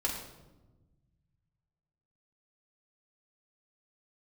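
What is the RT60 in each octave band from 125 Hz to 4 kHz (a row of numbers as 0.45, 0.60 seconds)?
2.7, 1.9, 1.3, 0.95, 0.75, 0.70 seconds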